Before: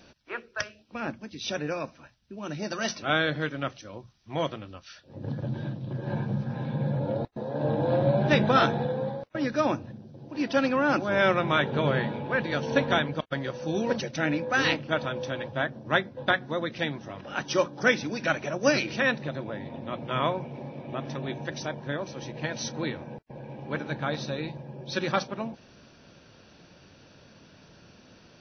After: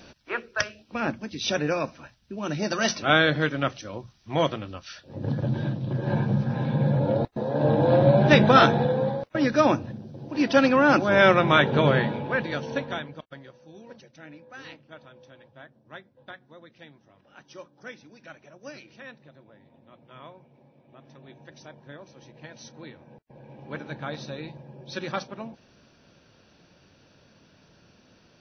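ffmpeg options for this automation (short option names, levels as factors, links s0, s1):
-af "volume=10.6,afade=t=out:st=11.8:d=1.05:silence=0.237137,afade=t=out:st=12.85:d=0.78:silence=0.251189,afade=t=in:st=20.87:d=0.91:silence=0.446684,afade=t=in:st=22.98:d=0.77:silence=0.398107"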